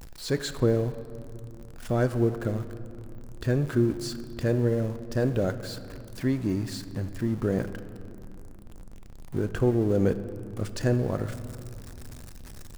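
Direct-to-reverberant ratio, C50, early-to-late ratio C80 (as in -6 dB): 11.0 dB, 12.5 dB, 13.0 dB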